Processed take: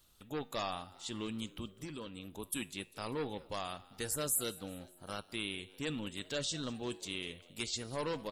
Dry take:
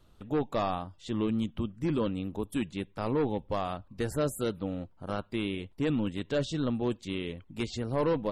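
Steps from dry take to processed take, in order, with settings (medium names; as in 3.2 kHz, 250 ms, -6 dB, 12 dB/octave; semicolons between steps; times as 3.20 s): pre-emphasis filter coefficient 0.9; 1.81–2.28 s: compression, threshold -50 dBFS, peak gain reduction 6.5 dB; feedback comb 52 Hz, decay 0.52 s, harmonics odd, mix 40%; on a send: frequency-shifting echo 198 ms, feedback 54%, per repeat +80 Hz, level -21 dB; on the sum: trim +12 dB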